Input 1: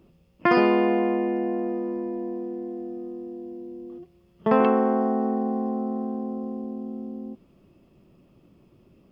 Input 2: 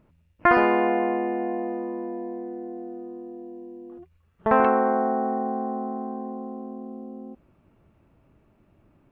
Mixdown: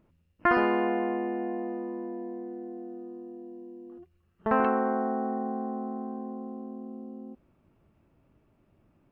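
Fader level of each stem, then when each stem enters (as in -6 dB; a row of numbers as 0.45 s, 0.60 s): -18.0 dB, -5.5 dB; 0.00 s, 0.00 s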